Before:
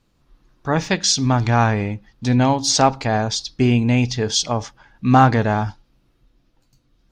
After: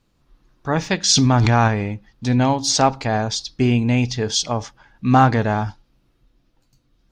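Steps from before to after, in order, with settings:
0:01.09–0:01.68: envelope flattener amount 100%
level −1 dB

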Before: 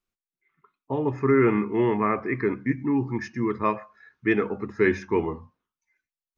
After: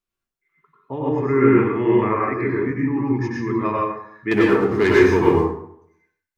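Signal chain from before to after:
0:04.31–0:05.31: leveller curve on the samples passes 2
dense smooth reverb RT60 0.7 s, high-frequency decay 0.6×, pre-delay 85 ms, DRR −4.5 dB
level −2 dB

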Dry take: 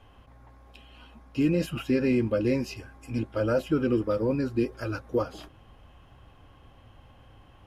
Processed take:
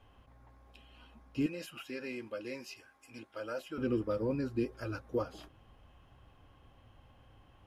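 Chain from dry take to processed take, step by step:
0:01.46–0:03.78: high-pass filter 1,100 Hz 6 dB per octave
level −7 dB

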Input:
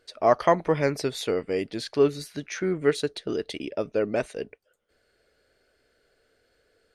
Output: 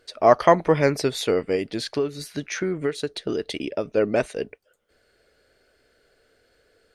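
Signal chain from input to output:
0:01.55–0:03.97: downward compressor 6 to 1, threshold −26 dBFS, peak gain reduction 11 dB
level +4.5 dB

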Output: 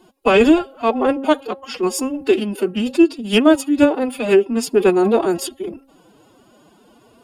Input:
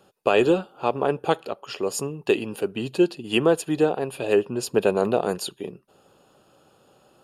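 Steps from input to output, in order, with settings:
low-shelf EQ 170 Hz +9 dB
hum removal 143.5 Hz, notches 7
phase-vocoder pitch shift with formants kept +11 semitones
level +6 dB

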